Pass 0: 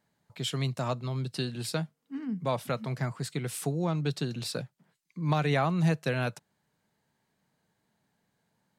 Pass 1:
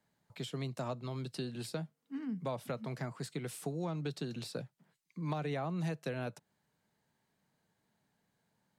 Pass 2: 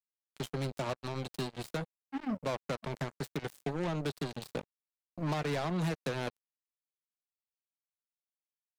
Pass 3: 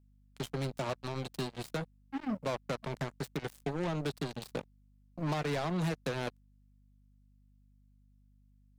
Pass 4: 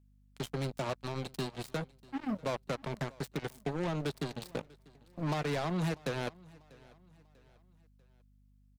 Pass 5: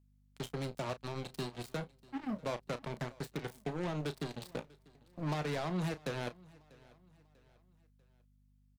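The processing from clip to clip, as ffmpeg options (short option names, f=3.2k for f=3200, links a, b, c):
-filter_complex "[0:a]acrossover=split=170|790[a][b][c];[a]acompressor=threshold=-45dB:ratio=4[d];[b]acompressor=threshold=-33dB:ratio=4[e];[c]acompressor=threshold=-43dB:ratio=4[f];[d][e][f]amix=inputs=3:normalize=0,volume=-3dB"
-af "acrusher=bits=5:mix=0:aa=0.5,volume=2.5dB"
-af "aeval=exprs='val(0)+0.000708*(sin(2*PI*50*n/s)+sin(2*PI*2*50*n/s)/2+sin(2*PI*3*50*n/s)/3+sin(2*PI*4*50*n/s)/4+sin(2*PI*5*50*n/s)/5)':c=same"
-af "aecho=1:1:643|1286|1929:0.0668|0.0287|0.0124"
-filter_complex "[0:a]asplit=2[a][b];[b]adelay=33,volume=-12.5dB[c];[a][c]amix=inputs=2:normalize=0,volume=-3dB"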